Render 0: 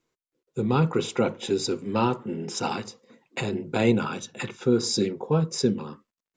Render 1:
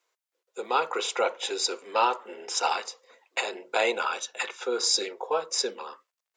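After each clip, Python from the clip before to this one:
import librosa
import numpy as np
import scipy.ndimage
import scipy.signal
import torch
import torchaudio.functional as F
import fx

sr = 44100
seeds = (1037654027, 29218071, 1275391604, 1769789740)

y = scipy.signal.sosfilt(scipy.signal.butter(4, 550.0, 'highpass', fs=sr, output='sos'), x)
y = y * librosa.db_to_amplitude(4.0)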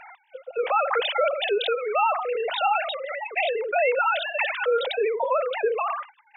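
y = fx.sine_speech(x, sr)
y = fx.env_flatten(y, sr, amount_pct=70)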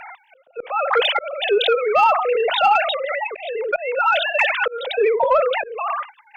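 y = fx.auto_swell(x, sr, attack_ms=402.0)
y = fx.cheby_harmonics(y, sr, harmonics=(2, 5, 7), levels_db=(-36, -24, -33), full_scale_db=-11.5)
y = y * librosa.db_to_amplitude(6.5)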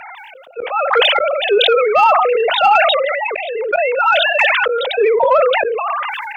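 y = scipy.signal.sosfilt(scipy.signal.butter(2, 51.0, 'highpass', fs=sr, output='sos'), x)
y = fx.sustainer(y, sr, db_per_s=23.0)
y = y * librosa.db_to_amplitude(3.5)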